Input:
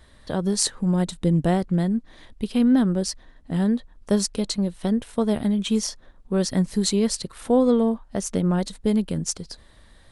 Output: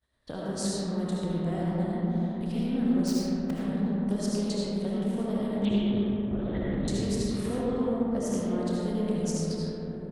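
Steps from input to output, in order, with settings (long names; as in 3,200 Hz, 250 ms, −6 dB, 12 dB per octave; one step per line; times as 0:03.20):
0:03.07–0:03.51: each half-wave held at its own peak
double-tracking delay 30 ms −10.5 dB
0:05.65–0:06.88: linear-prediction vocoder at 8 kHz whisper
high-pass filter 43 Hz 6 dB per octave
downward expander −40 dBFS
downward compressor 3 to 1, threshold −33 dBFS, peak gain reduction 14 dB
convolution reverb RT60 4.6 s, pre-delay 35 ms, DRR −7 dB
highs frequency-modulated by the lows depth 0.16 ms
level −4 dB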